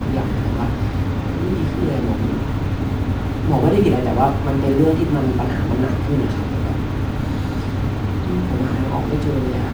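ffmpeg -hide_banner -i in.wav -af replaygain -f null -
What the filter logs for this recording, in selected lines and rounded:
track_gain = +1.1 dB
track_peak = 0.552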